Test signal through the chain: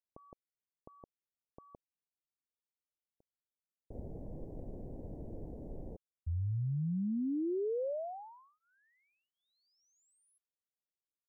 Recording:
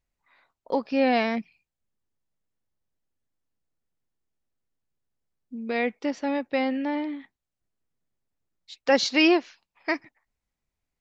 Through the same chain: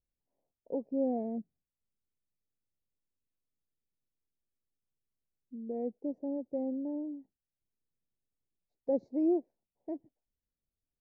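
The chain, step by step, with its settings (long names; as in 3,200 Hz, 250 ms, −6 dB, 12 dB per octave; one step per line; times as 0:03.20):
inverse Chebyshev low-pass filter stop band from 1,200 Hz, stop band 40 dB
level −7.5 dB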